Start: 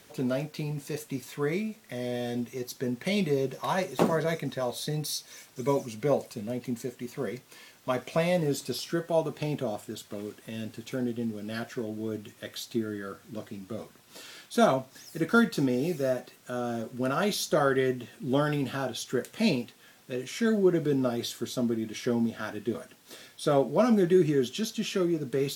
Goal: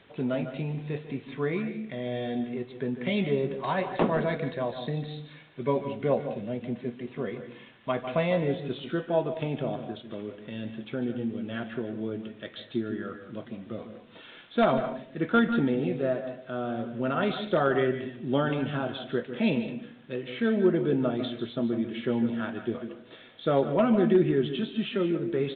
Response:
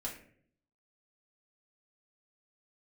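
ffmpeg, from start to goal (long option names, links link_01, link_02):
-filter_complex "[0:a]aeval=exprs='0.211*(abs(mod(val(0)/0.211+3,4)-2)-1)':channel_layout=same,asplit=2[link_01][link_02];[1:a]atrim=start_sample=2205,adelay=145[link_03];[link_02][link_03]afir=irnorm=-1:irlink=0,volume=-9.5dB[link_04];[link_01][link_04]amix=inputs=2:normalize=0,aresample=8000,aresample=44100"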